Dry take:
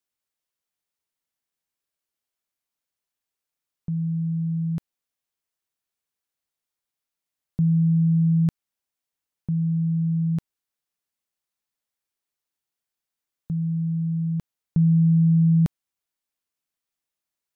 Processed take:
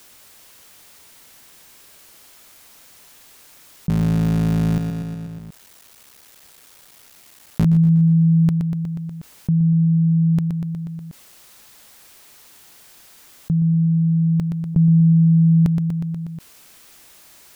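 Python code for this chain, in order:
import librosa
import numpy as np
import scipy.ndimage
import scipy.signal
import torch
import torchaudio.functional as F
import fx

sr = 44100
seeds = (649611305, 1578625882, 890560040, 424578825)

y = fx.cycle_switch(x, sr, every=3, mode='muted', at=(3.89, 7.65))
y = fx.echo_feedback(y, sr, ms=121, feedback_pct=56, wet_db=-11)
y = fx.env_flatten(y, sr, amount_pct=50)
y = F.gain(torch.from_numpy(y), 3.0).numpy()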